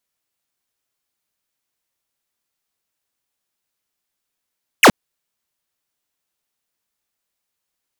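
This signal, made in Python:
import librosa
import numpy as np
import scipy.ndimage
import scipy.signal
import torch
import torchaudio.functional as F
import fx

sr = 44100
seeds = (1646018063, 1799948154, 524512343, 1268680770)

y = fx.laser_zap(sr, level_db=-7, start_hz=3200.0, end_hz=150.0, length_s=0.07, wave='square')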